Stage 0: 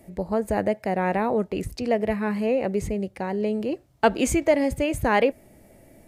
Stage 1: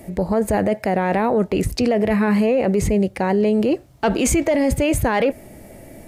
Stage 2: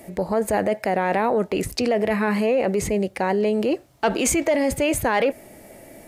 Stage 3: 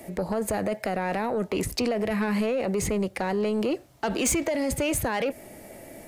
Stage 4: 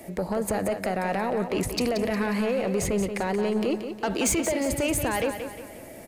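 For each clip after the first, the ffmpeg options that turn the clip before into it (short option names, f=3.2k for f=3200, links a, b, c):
-af "acontrast=86,alimiter=limit=-15dB:level=0:latency=1:release=12,volume=4dB"
-af "lowshelf=f=210:g=-12"
-filter_complex "[0:a]acrossover=split=210|3000[a][b][c];[b]acompressor=threshold=-23dB:ratio=6[d];[a][d][c]amix=inputs=3:normalize=0,asoftclip=type=tanh:threshold=-18dB"
-af "aecho=1:1:179|358|537|716|895:0.376|0.169|0.0761|0.0342|0.0154"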